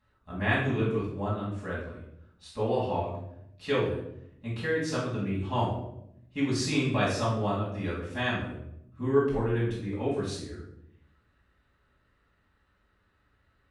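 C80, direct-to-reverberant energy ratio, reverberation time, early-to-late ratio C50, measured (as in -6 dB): 6.5 dB, -7.5 dB, 0.80 s, 2.5 dB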